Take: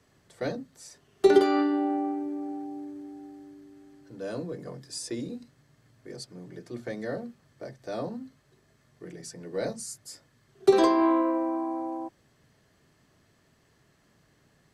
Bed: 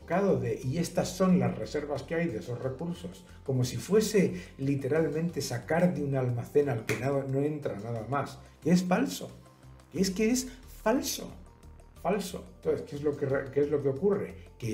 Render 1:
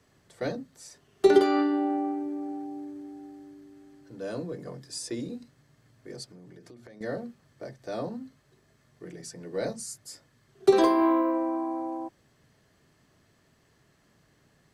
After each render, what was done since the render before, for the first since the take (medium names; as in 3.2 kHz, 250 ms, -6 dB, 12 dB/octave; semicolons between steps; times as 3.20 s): 6.26–7.01 s: compression 16:1, threshold -45 dBFS; 10.81–11.32 s: decimation joined by straight lines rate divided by 3×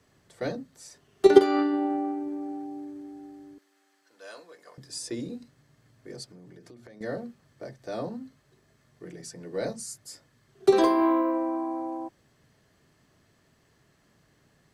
1.25–2.41 s: transient shaper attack +9 dB, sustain -2 dB; 3.58–4.78 s: high-pass 1 kHz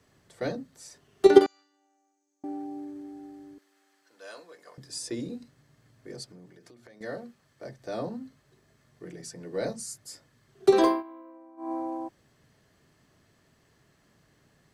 1.46–2.44 s: band-pass filter 6.5 kHz, Q 10; 6.46–7.65 s: bass shelf 470 Hz -7 dB; 10.88–11.72 s: dip -23 dB, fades 0.15 s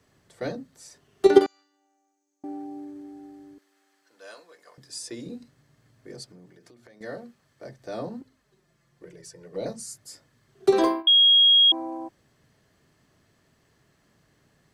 4.34–5.26 s: bass shelf 490 Hz -6 dB; 8.21–9.66 s: touch-sensitive flanger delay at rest 6.5 ms, full sweep at -31 dBFS; 11.07–11.72 s: bleep 3.28 kHz -13 dBFS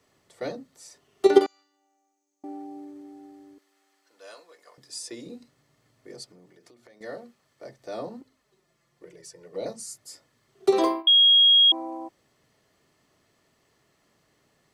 tone controls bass -8 dB, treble 0 dB; band-stop 1.6 kHz, Q 7.9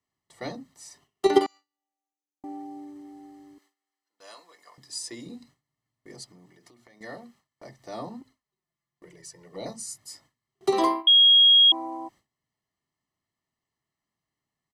gate with hold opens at -49 dBFS; comb 1 ms, depth 56%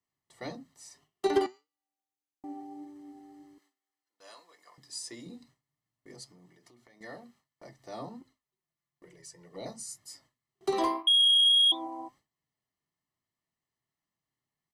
flange 1.7 Hz, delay 5.5 ms, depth 2.8 ms, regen +79%; saturation -16.5 dBFS, distortion -19 dB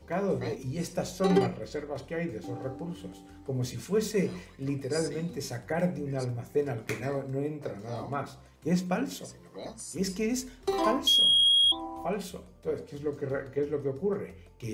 add bed -3 dB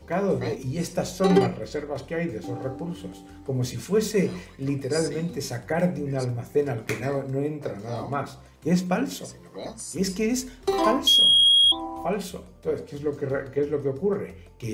trim +5 dB